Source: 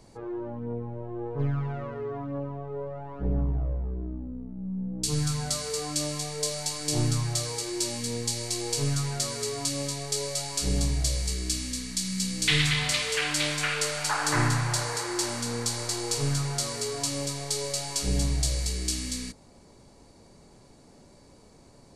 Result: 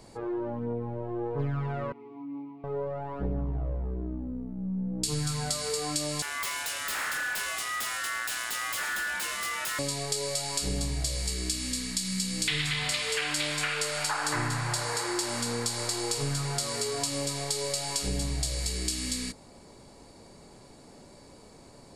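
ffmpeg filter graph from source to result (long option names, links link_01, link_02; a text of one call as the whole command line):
ffmpeg -i in.wav -filter_complex "[0:a]asettb=1/sr,asplit=3[link_01][link_02][link_03];[link_01]atrim=end=1.924[link_04];[link_02]atrim=start=1.92:end=2.64,asetpts=PTS-STARTPTS,afade=type=in:duration=0.004:curve=qsin,afade=type=out:start_time=0.716:duration=0.004:curve=qsin,aeval=exprs='sgn(val(0))*max(abs(val(0))-0.00316,0)':channel_layout=same,asplit=3[link_05][link_06][link_07];[link_05]bandpass=frequency=300:width_type=q:width=8,volume=0dB[link_08];[link_06]bandpass=frequency=870:width_type=q:width=8,volume=-6dB[link_09];[link_07]bandpass=frequency=2240:width_type=q:width=8,volume=-9dB[link_10];[link_08][link_09][link_10]amix=inputs=3:normalize=0[link_11];[link_03]atrim=start=2.636[link_12];[link_04][link_11]acrossfade=duration=0.004:curve1=hsin:curve2=qsin[link_13];[link_13][link_12]acrossfade=duration=0.004:curve1=qsin:curve2=hsin,asettb=1/sr,asplit=3[link_14][link_15][link_16];[link_14]atrim=end=6.224[link_17];[link_15]atrim=start=6.22:end=9.79,asetpts=PTS-STARTPTS,afade=type=in:duration=0.004:curve=qsin,afade=type=out:start_time=3.566:duration=0.004:curve=qsin,aeval=exprs='0.0447*(abs(mod(val(0)/0.0447+3,4)-2)-1)':channel_layout=same,aeval=exprs='val(0)*sin(2*PI*1600*n/s)':channel_layout=same[link_18];[link_16]atrim=start=9.786[link_19];[link_17][link_18]acrossfade=duration=0.004:curve1=hsin:curve2=qsin[link_20];[link_20][link_19]acrossfade=duration=0.004:curve1=qsin:curve2=hsin,lowshelf=frequency=220:gain=-5,bandreject=frequency=6000:width=9,acompressor=threshold=-32dB:ratio=4,volume=4.5dB" out.wav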